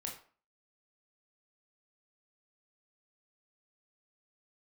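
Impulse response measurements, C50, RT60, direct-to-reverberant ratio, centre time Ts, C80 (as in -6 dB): 7.5 dB, 0.45 s, -0.5 dB, 25 ms, 12.0 dB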